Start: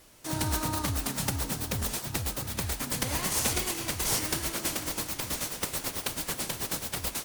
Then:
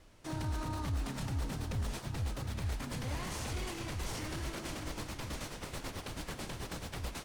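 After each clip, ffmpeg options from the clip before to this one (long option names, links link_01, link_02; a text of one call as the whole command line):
ffmpeg -i in.wav -af "aemphasis=mode=reproduction:type=50fm,alimiter=level_in=3.5dB:limit=-24dB:level=0:latency=1:release=15,volume=-3.5dB,lowshelf=frequency=94:gain=10,volume=-4.5dB" out.wav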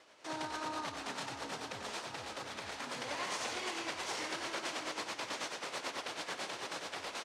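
ffmpeg -i in.wav -af "tremolo=f=9:d=0.33,highpass=490,lowpass=6700,aecho=1:1:93:0.376,volume=6dB" out.wav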